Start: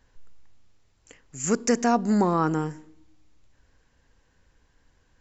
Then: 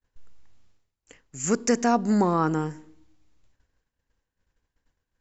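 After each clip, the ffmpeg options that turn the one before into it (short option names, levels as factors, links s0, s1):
-af "agate=range=0.0224:threshold=0.00282:ratio=3:detection=peak"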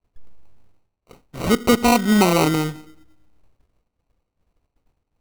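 -af "acrusher=samples=26:mix=1:aa=0.000001,volume=2"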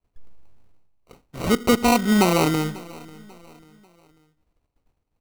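-af "aecho=1:1:542|1084|1626:0.0841|0.0337|0.0135,volume=0.794"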